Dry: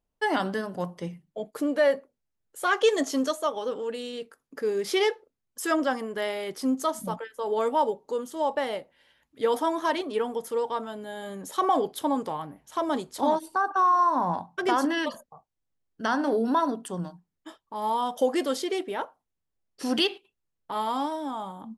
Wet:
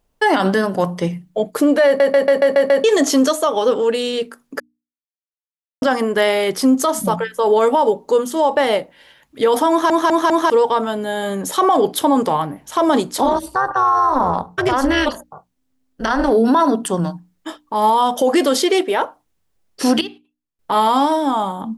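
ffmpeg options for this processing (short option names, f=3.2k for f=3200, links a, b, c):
-filter_complex "[0:a]asplit=3[a][b][c];[a]afade=t=out:st=13.24:d=0.02[d];[b]tremolo=f=260:d=0.75,afade=t=in:st=13.24:d=0.02,afade=t=out:st=16.29:d=0.02[e];[c]afade=t=in:st=16.29:d=0.02[f];[d][e][f]amix=inputs=3:normalize=0,asettb=1/sr,asplit=3[g][h][i];[g]atrim=end=18.604[j];[h]atrim=start=18.6:end=19.02,asetpts=PTS-STARTPTS,afade=t=in:d=0.004:c=qsin,afade=t=out:st=0.416:d=0.004:c=qsin,highpass=280[k];[i]atrim=start=19.016[l];[j][k]acrossfade=d=0.004:c1=hsin:c2=qsin[m];[m][l]acrossfade=d=0.004:c1=qsin:c2=hsin,asplit=16[n][o][p][q][r][s][t][u][v][w][x][y][z][aa][ab][ac];[n]atrim=end=2.002[ad];[o]atrim=start=1.858:end=2.002[ae];[p]atrim=start=1.858:end=2.002[af];[q]atrim=start=1.858:end=2.002[ag];[r]atrim=start=1.858:end=2.002[ah];[s]atrim=start=1.858:end=2.002[ai];[t]atrim=start=1.858:end=2.002[aj];[u]atrim=start=2.838:end=4.6,asetpts=PTS-STARTPTS,afade=t=out:st=1.758:d=0.004:c=hsin[ak];[v]atrim=start=4.6:end=5.82,asetpts=PTS-STARTPTS,volume=0[al];[w]atrim=start=5.82:end=9.902,asetpts=PTS-STARTPTS,afade=t=in:d=0.004:c=hsin[am];[x]atrim=start=9.698:end=9.902[an];[y]atrim=start=9.698:end=9.902[ao];[z]atrim=start=9.698:end=9.902[ap];[aa]atrim=start=10.498:end=20.01,asetpts=PTS-STARTPTS,afade=t=out:st=9.362:d=0.15:c=log:silence=0.1[aq];[ab]atrim=start=20.01:end=20.59,asetpts=PTS-STARTPTS,volume=-20dB[ar];[ac]atrim=start=20.59,asetpts=PTS-STARTPTS,afade=t=in:d=0.15:c=log:silence=0.1[as];[ad][ae]acrossfade=d=0.004:c1=hsin:c2=hsin[at];[at][af]acrossfade=d=0.004:c1=hsin:c2=hsin[au];[au][ag]acrossfade=d=0.004:c1=hsin:c2=hsin[av];[av][ah]acrossfade=d=0.004:c1=hsin:c2=hsin[aw];[aw][ai]acrossfade=d=0.004:c1=hsin:c2=hsin[ax];[ax][aj]acrossfade=d=0.004:c1=hsin:c2=hsin[ay];[ak][al][am]concat=n=3:v=0:a=1[az];[ay][az]acrossfade=d=0.004:c1=hsin:c2=hsin[ba];[ba][an]acrossfade=d=0.004:c1=hsin:c2=hsin[bb];[bb][ao]acrossfade=d=0.004:c1=hsin:c2=hsin[bc];[bc][ap]acrossfade=d=0.004:c1=hsin:c2=hsin[bd];[aq][ar][as]concat=n=3:v=0:a=1[be];[bd][be]acrossfade=d=0.004:c1=hsin:c2=hsin,bandreject=f=60:t=h:w=6,bandreject=f=120:t=h:w=6,bandreject=f=180:t=h:w=6,bandreject=f=240:t=h:w=6,bandreject=f=300:t=h:w=6,alimiter=level_in=20.5dB:limit=-1dB:release=50:level=0:latency=1,volume=-5.5dB"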